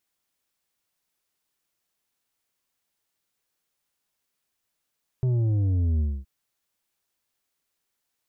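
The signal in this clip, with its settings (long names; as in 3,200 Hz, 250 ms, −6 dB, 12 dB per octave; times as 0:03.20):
bass drop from 130 Hz, over 1.02 s, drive 7 dB, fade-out 0.25 s, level −21 dB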